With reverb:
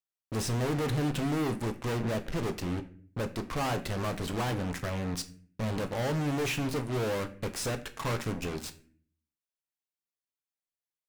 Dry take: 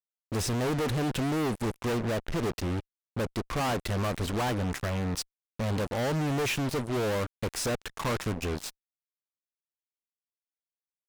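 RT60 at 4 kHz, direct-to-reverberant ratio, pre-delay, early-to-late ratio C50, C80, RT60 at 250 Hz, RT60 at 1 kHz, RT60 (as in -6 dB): 0.35 s, 7.5 dB, 6 ms, 14.5 dB, 18.0 dB, 0.80 s, 0.40 s, 0.50 s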